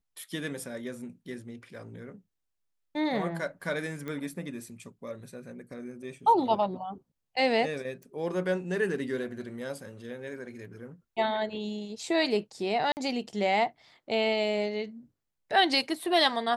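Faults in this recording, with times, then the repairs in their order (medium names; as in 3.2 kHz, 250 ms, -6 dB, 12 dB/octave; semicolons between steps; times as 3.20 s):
4.08 s: pop -24 dBFS
8.03 s: pop
12.92–12.97 s: dropout 49 ms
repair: de-click; interpolate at 12.92 s, 49 ms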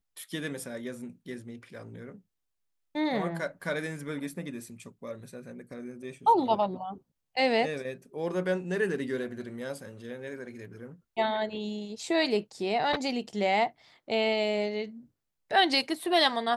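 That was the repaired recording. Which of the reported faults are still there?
nothing left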